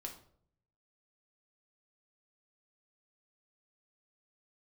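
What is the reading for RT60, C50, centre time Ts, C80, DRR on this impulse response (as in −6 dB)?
0.60 s, 9.5 dB, 16 ms, 13.5 dB, 1.5 dB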